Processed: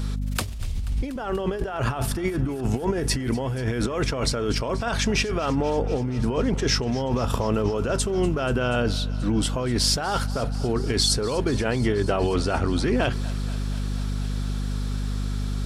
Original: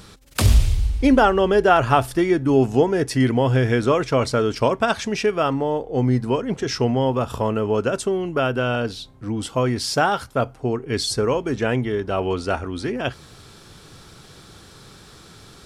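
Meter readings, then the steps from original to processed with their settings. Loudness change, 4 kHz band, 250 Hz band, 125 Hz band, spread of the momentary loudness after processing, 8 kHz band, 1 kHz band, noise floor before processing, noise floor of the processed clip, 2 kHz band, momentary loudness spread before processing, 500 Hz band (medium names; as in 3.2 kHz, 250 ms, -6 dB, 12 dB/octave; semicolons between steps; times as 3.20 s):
-4.5 dB, +2.0 dB, -3.5 dB, -2.0 dB, 7 LU, +3.0 dB, -7.5 dB, -46 dBFS, -29 dBFS, -4.5 dB, 9 LU, -6.0 dB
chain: hum 50 Hz, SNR 10 dB; compressor with a negative ratio -24 dBFS, ratio -1; thinning echo 241 ms, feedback 83%, level -18.5 dB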